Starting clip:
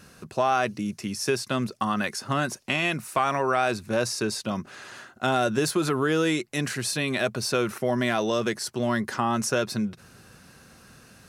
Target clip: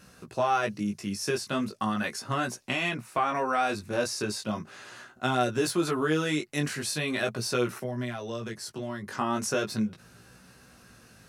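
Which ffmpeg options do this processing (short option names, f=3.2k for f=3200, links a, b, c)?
-filter_complex "[0:a]asettb=1/sr,asplit=3[a][b][c];[a]atrim=end=2.894[d];[b]atrim=start=2.89:end=3.35,asetpts=PTS-STARTPTS,afade=t=in:d=0.004:c=qsin,afade=t=out:st=0.456:d=0.004:c=qsin,highshelf=f=5.3k:g=-10.5[e];[c]atrim=start=3.346[f];[d][e]acrossfade=d=0.004:c1=hsin:c2=qsin[g];[g][f]acrossfade=d=0.004:c1=qsin:c2=hsin,asettb=1/sr,asplit=3[h][i][j];[h]atrim=end=7.694[k];[i]atrim=start=7.69:end=9.17,asetpts=PTS-STARTPTS,afade=t=in:d=0.004:c=qsin,afade=t=out:st=1.476:d=0.004:c=qsin,acrossover=split=140[l][m];[m]acompressor=threshold=-31dB:ratio=6[n];[l][n]amix=inputs=2:normalize=0[o];[j]atrim=start=9.166[p];[k][o]acrossfade=d=0.004:c1=hsin:c2=qsin[q];[q][p]acrossfade=d=0.004:c1=qsin:c2=hsin,flanger=delay=16:depth=4.4:speed=0.38"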